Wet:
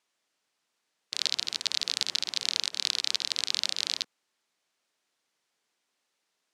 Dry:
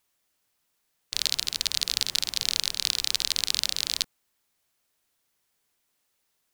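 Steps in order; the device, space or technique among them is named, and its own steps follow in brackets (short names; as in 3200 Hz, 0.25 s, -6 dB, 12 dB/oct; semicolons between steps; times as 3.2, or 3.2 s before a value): public-address speaker with an overloaded transformer (core saturation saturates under 3600 Hz; BPF 220–6700 Hz)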